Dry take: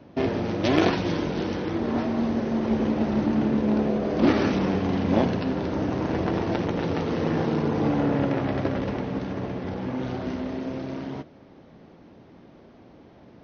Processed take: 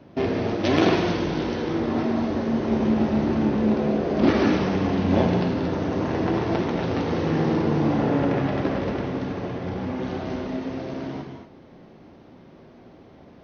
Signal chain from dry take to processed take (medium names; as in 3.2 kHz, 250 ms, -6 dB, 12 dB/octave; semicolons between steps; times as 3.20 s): gated-style reverb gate 270 ms flat, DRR 2.5 dB